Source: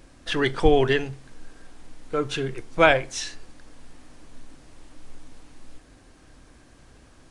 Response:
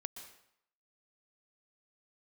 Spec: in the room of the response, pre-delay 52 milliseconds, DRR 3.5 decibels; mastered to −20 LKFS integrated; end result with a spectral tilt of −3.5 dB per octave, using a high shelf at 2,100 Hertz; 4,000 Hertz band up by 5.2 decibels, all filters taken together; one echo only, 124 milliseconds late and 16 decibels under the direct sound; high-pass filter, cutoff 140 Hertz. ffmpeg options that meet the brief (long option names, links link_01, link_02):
-filter_complex "[0:a]highpass=140,highshelf=frequency=2100:gain=3,equalizer=frequency=4000:width_type=o:gain=4,aecho=1:1:124:0.158,asplit=2[link_01][link_02];[1:a]atrim=start_sample=2205,adelay=52[link_03];[link_02][link_03]afir=irnorm=-1:irlink=0,volume=-1dB[link_04];[link_01][link_04]amix=inputs=2:normalize=0,volume=0.5dB"